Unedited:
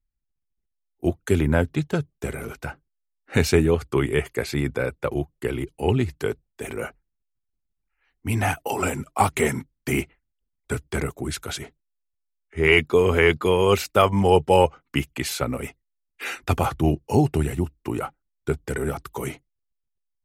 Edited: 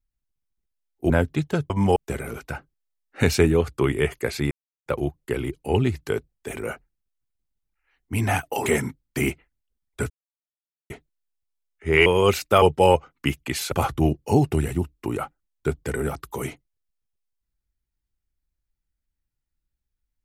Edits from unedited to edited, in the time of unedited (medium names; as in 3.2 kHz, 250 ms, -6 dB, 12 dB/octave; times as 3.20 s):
1.10–1.50 s: delete
4.65–5.00 s: mute
8.80–9.37 s: delete
10.81–11.61 s: mute
12.77–13.50 s: delete
14.06–14.32 s: move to 2.10 s
15.42–16.54 s: delete